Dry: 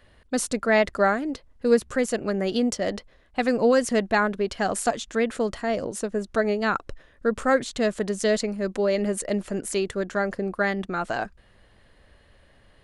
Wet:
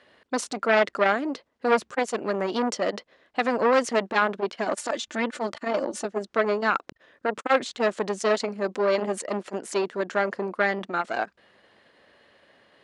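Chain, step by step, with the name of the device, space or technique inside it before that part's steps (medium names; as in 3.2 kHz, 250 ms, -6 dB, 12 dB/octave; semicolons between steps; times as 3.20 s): 4.67–6.05 s: comb 3.4 ms, depth 74%; public-address speaker with an overloaded transformer (transformer saturation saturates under 1.4 kHz; band-pass 270–6100 Hz); trim +3 dB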